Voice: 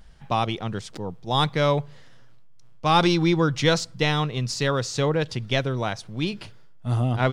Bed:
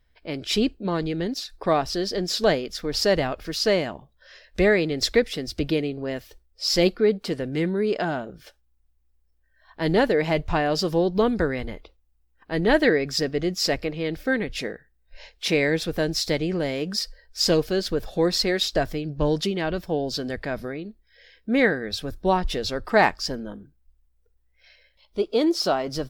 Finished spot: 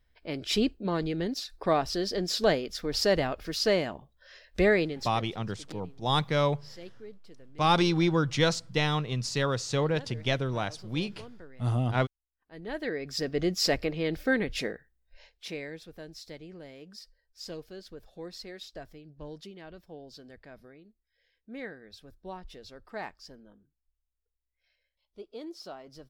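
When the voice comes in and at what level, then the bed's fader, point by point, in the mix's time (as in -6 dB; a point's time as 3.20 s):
4.75 s, -4.5 dB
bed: 4.83 s -4 dB
5.25 s -26.5 dB
12.30 s -26.5 dB
13.43 s -2.5 dB
14.67 s -2.5 dB
15.82 s -20.5 dB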